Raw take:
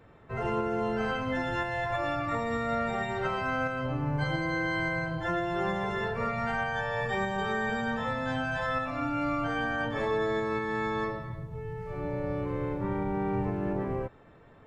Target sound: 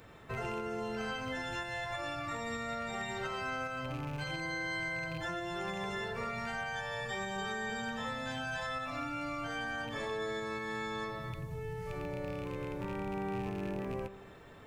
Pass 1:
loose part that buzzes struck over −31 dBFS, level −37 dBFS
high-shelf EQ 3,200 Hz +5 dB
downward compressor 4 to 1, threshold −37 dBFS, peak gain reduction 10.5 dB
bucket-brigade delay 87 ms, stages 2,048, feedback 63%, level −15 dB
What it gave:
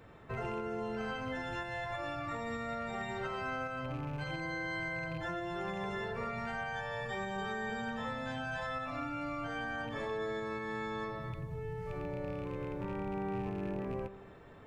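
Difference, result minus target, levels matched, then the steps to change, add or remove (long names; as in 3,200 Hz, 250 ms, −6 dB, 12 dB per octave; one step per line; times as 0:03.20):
8,000 Hz band −8.0 dB
change: high-shelf EQ 3,200 Hz +16.5 dB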